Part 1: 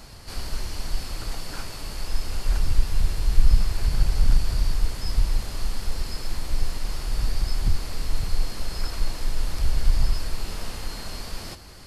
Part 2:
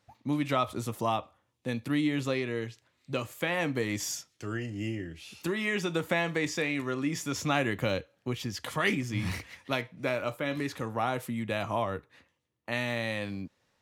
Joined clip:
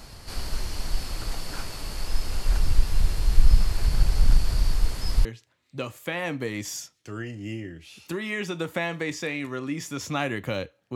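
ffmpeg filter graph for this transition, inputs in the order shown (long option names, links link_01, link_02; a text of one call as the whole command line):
ffmpeg -i cue0.wav -i cue1.wav -filter_complex "[0:a]apad=whole_dur=10.95,atrim=end=10.95,atrim=end=5.252[link_01];[1:a]atrim=start=2.598:end=8.3[link_02];[link_01][link_02]acrossfade=duration=0.004:curve1=hsin:curve2=hsin" out.wav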